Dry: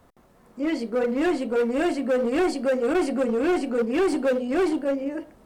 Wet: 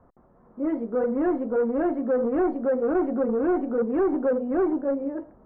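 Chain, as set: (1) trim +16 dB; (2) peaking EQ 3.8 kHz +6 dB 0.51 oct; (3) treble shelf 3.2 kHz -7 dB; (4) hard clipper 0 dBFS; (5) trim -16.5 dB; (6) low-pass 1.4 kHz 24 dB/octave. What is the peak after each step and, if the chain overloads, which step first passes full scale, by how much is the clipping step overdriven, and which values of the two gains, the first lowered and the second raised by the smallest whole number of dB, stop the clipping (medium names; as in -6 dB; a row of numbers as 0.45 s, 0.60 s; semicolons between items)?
-2.0 dBFS, -1.0 dBFS, -1.5 dBFS, -1.5 dBFS, -18.0 dBFS, -17.0 dBFS; nothing clips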